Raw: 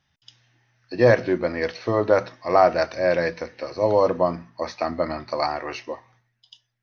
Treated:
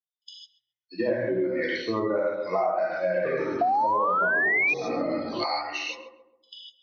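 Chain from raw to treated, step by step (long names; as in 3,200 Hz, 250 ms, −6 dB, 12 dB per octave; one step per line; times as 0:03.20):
spectral dynamics exaggerated over time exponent 2
dynamic equaliser 660 Hz, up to +4 dB, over −32 dBFS, Q 2.9
brickwall limiter −15 dBFS, peak gain reduction 10.5 dB
feedback echo with a low-pass in the loop 135 ms, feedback 43%, low-pass 1,100 Hz, level −8.5 dB
treble cut that deepens with the level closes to 1,500 Hz, closed at −24 dBFS
reverb whose tail is shaped and stops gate 180 ms flat, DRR −6 dB
0:03.11–0:05.44: delay with pitch and tempo change per echo 137 ms, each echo −5 semitones, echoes 3, each echo −6 dB
0:03.61–0:04.74: sound drawn into the spectrogram rise 690–2,500 Hz −14 dBFS
high-shelf EQ 3,400 Hz +8.5 dB
downward compressor 6 to 1, threshold −22 dBFS, peak gain reduction 12.5 dB
band-pass filter 180–5,300 Hz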